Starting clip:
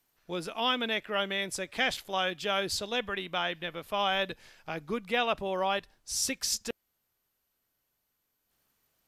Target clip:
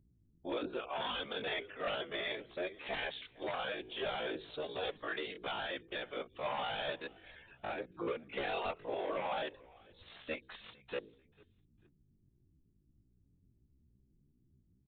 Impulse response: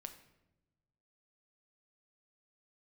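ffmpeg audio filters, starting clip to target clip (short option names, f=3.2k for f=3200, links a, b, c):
-filter_complex "[0:a]afftfilt=real='re*gte(hypot(re,im),0.00251)':imag='im*gte(hypot(re,im),0.00251)':win_size=1024:overlap=0.75,lowshelf=f=270:t=q:w=1.5:g=-9,bandreject=f=60:t=h:w=6,bandreject=f=120:t=h:w=6,bandreject=f=180:t=h:w=6,bandreject=f=240:t=h:w=6,bandreject=f=300:t=h:w=6,bandreject=f=360:t=h:w=6,bandreject=f=420:t=h:w=6,acompressor=threshold=-45dB:ratio=2,aeval=exprs='val(0)+0.000251*(sin(2*PI*60*n/s)+sin(2*PI*2*60*n/s)/2+sin(2*PI*3*60*n/s)/3+sin(2*PI*4*60*n/s)/4+sin(2*PI*5*60*n/s)/5)':c=same,aeval=exprs='0.02*(abs(mod(val(0)/0.02+3,4)-2)-1)':c=same,asplit=3[a][b][c];[b]adelay=273,afreqshift=-48,volume=-23.5dB[d];[c]adelay=546,afreqshift=-96,volume=-32.9dB[e];[a][d][e]amix=inputs=3:normalize=0,afftfilt=real='hypot(re,im)*cos(2*PI*random(0))':imag='hypot(re,im)*sin(2*PI*random(1))':win_size=512:overlap=0.75,atempo=0.61,aresample=8000,aresample=44100,volume=10dB"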